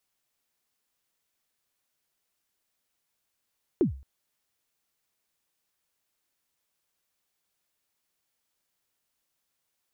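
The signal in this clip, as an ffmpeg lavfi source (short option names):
-f lavfi -i "aevalsrc='0.158*pow(10,-3*t/0.4)*sin(2*PI*(410*0.116/log(67/410)*(exp(log(67/410)*min(t,0.116)/0.116)-1)+67*max(t-0.116,0)))':d=0.22:s=44100"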